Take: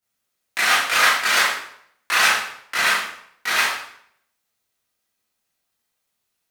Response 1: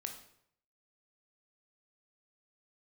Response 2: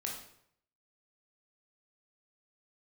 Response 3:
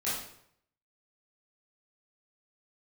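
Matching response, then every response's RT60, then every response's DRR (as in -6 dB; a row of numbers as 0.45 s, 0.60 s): 3; 0.70 s, 0.70 s, 0.70 s; 3.5 dB, -2.0 dB, -11.0 dB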